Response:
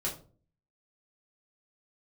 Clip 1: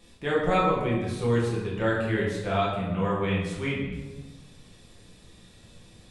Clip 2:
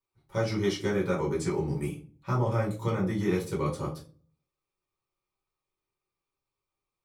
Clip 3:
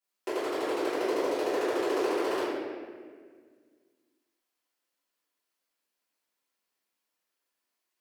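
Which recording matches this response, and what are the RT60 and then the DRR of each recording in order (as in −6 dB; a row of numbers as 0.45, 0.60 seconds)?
2; 1.2, 0.40, 1.8 seconds; −6.0, −5.0, −18.0 decibels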